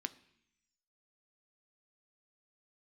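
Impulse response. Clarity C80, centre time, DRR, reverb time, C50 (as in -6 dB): 21.0 dB, 4 ms, 11.0 dB, 0.70 s, 19.0 dB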